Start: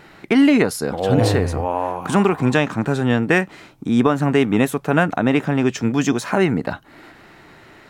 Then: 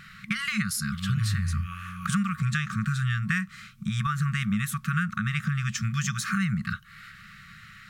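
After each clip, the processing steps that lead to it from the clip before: FFT band-reject 220–1100 Hz; dynamic EQ 2800 Hz, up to -5 dB, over -38 dBFS, Q 1.4; compressor, threshold -23 dBFS, peak gain reduction 9 dB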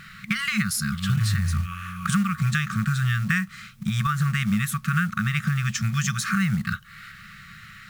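companded quantiser 6-bit; gain +3.5 dB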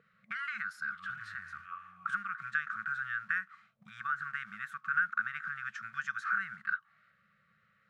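auto-wah 460–1500 Hz, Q 6.9, up, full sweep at -23 dBFS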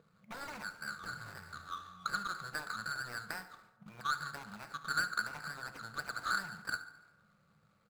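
median filter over 25 samples; feedback echo 71 ms, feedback 52%, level -16 dB; FDN reverb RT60 1.1 s, low-frequency decay 0.7×, high-frequency decay 0.4×, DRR 10 dB; gain +5.5 dB

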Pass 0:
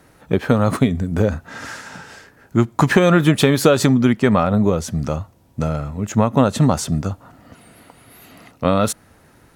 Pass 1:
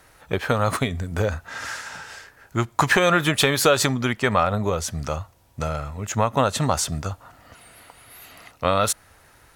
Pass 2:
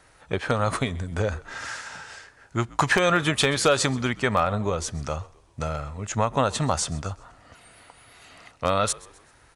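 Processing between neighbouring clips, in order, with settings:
bell 220 Hz -14 dB 2.2 oct; gain +2 dB
frequency-shifting echo 0.129 s, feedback 43%, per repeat -66 Hz, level -22 dB; downsampling 22050 Hz; wavefolder -6 dBFS; gain -2.5 dB

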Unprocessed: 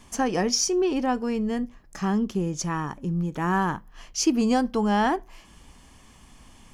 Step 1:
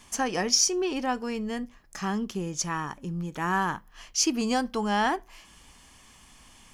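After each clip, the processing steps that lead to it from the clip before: tilt shelf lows -4.5 dB, about 850 Hz; gain -2 dB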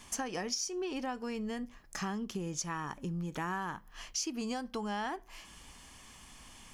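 compressor 6:1, threshold -34 dBFS, peak gain reduction 15 dB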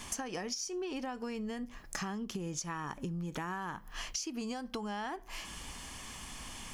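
compressor 6:1, threshold -44 dBFS, peak gain reduction 12.5 dB; gain +8 dB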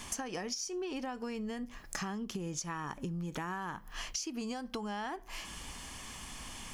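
mismatched tape noise reduction encoder only

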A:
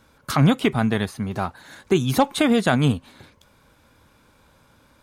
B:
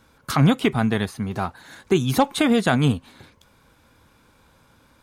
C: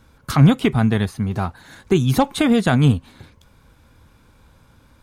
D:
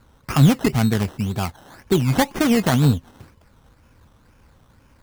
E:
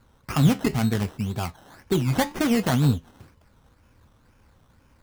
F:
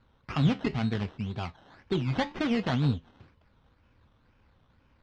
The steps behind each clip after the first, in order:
notch 590 Hz, Q 16
low shelf 140 Hz +11.5 dB
decimation with a swept rate 15×, swing 60% 2 Hz; gain -1.5 dB
flange 0.71 Hz, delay 7.5 ms, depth 6.1 ms, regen -73%
ladder low-pass 4800 Hz, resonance 25%

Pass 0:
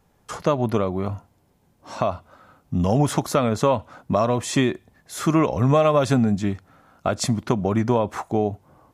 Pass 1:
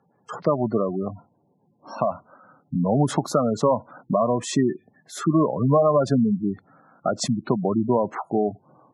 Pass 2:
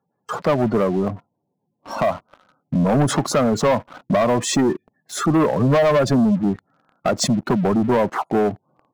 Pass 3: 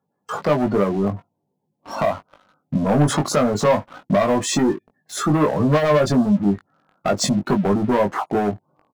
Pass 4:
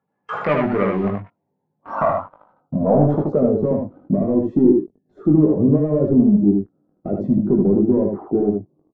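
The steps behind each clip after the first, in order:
HPF 130 Hz 24 dB/oct; spectral gate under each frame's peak -15 dB strong; LPF 8800 Hz
sample leveller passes 3; gain -3.5 dB
doubler 20 ms -4.5 dB; gain -1.5 dB
low-pass sweep 2200 Hz -> 350 Hz, 1.25–3.68; echo 77 ms -3.5 dB; gain -2 dB

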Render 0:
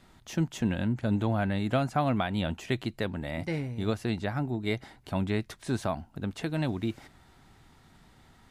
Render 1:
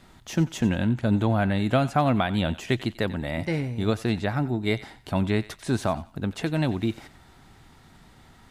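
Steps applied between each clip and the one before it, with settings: thinning echo 91 ms, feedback 32%, high-pass 1200 Hz, level -14.5 dB; gain +5 dB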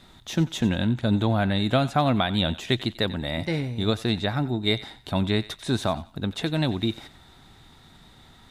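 bell 3700 Hz +12.5 dB 0.21 oct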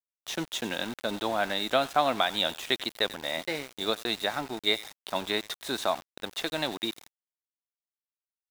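HPF 470 Hz 12 dB/oct; sample gate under -37 dBFS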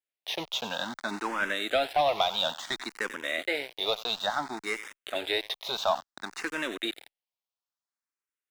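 overdrive pedal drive 16 dB, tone 3000 Hz, clips at -9 dBFS; endless phaser +0.58 Hz; gain -2.5 dB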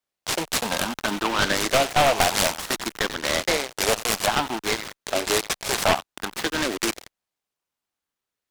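one-sided fold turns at -23 dBFS; noise-modulated delay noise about 1700 Hz, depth 0.095 ms; gain +8 dB

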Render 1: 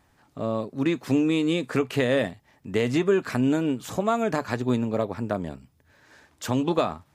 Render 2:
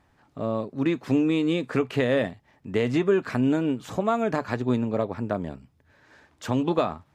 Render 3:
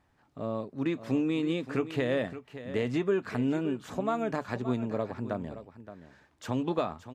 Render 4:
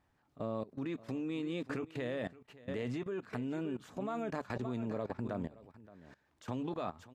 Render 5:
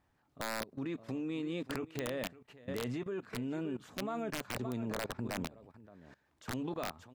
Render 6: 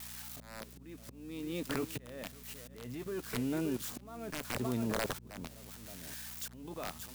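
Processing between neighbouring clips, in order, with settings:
high shelf 5900 Hz -11.5 dB
echo 0.572 s -13 dB; gain -6 dB
level quantiser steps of 19 dB; gain +1 dB
wrapped overs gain 27.5 dB
switching spikes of -37 dBFS; auto swell 0.712 s; buzz 60 Hz, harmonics 4, -59 dBFS -3 dB/oct; gain +3.5 dB

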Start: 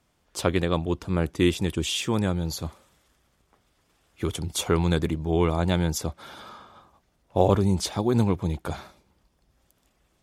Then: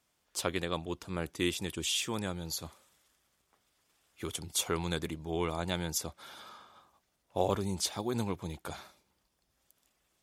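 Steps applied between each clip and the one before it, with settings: tilt +2 dB/oct; gain -7.5 dB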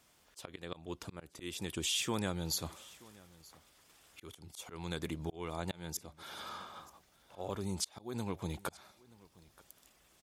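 auto swell 0.725 s; compressor 2:1, threshold -46 dBFS, peak gain reduction 9 dB; echo 0.928 s -22.5 dB; gain +8.5 dB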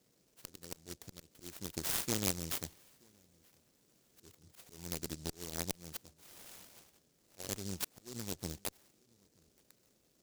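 band noise 110–620 Hz -65 dBFS; added harmonics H 3 -12 dB, 7 -36 dB, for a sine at -19.5 dBFS; noise-modulated delay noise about 5800 Hz, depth 0.29 ms; gain +8 dB

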